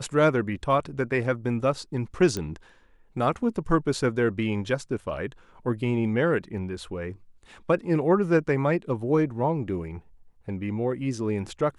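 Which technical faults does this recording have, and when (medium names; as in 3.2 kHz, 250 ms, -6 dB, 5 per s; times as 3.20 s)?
2.37 s: pop -16 dBFS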